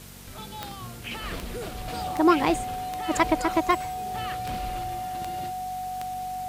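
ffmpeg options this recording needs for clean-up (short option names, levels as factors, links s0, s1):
-af "adeclick=t=4,bandreject=f=47.5:t=h:w=4,bandreject=f=95:t=h:w=4,bandreject=f=142.5:t=h:w=4,bandreject=f=190:t=h:w=4,bandreject=f=237.5:t=h:w=4,bandreject=f=740:w=30,afwtdn=0.0045"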